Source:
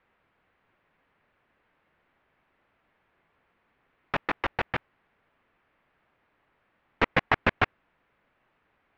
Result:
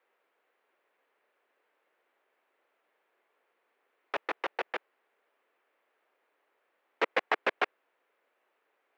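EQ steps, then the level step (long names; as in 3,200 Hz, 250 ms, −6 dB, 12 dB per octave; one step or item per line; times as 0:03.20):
four-pole ladder high-pass 350 Hz, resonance 40%
high-shelf EQ 5,900 Hz +9.5 dB
+2.0 dB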